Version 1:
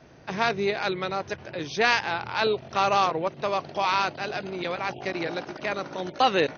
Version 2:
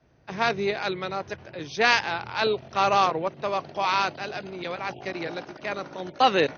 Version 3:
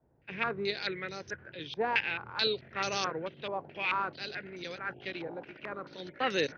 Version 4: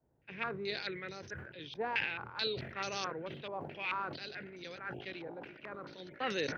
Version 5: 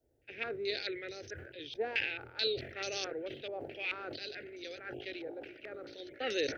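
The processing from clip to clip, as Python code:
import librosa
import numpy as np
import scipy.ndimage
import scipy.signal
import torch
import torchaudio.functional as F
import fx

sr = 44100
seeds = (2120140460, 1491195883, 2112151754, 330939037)

y1 = fx.band_widen(x, sr, depth_pct=40)
y2 = fx.band_shelf(y1, sr, hz=890.0, db=-9.0, octaves=1.2)
y2 = fx.filter_held_lowpass(y2, sr, hz=4.6, low_hz=880.0, high_hz=5700.0)
y2 = F.gain(torch.from_numpy(y2), -8.0).numpy()
y3 = fx.sustainer(y2, sr, db_per_s=63.0)
y3 = F.gain(torch.from_numpy(y3), -6.0).numpy()
y4 = fx.fixed_phaser(y3, sr, hz=430.0, stages=4)
y4 = F.gain(torch.from_numpy(y4), 3.5).numpy()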